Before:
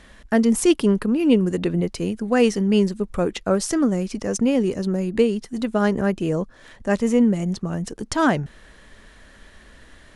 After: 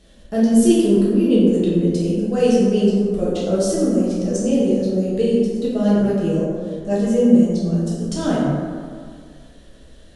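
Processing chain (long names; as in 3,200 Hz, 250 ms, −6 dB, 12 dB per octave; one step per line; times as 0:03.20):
flat-topped bell 1,400 Hz −11.5 dB
dense smooth reverb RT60 2 s, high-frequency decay 0.4×, DRR −8 dB
level −6 dB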